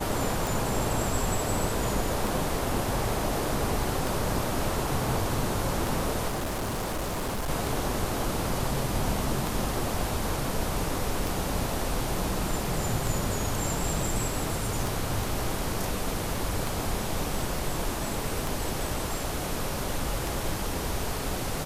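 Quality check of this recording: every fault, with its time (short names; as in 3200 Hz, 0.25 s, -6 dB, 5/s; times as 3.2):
tick 33 1/3 rpm
6.28–7.5 clipped -27 dBFS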